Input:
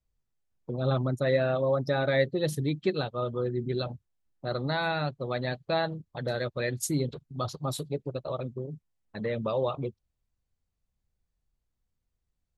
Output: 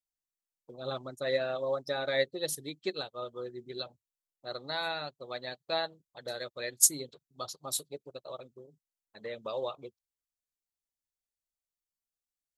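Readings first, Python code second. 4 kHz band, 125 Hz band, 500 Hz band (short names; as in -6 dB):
+1.0 dB, -19.5 dB, -6.0 dB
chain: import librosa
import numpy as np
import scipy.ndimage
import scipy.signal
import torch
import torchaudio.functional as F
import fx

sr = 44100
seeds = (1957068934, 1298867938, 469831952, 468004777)

y = fx.bass_treble(x, sr, bass_db=-14, treble_db=13)
y = fx.upward_expand(y, sr, threshold_db=-46.0, expansion=1.5)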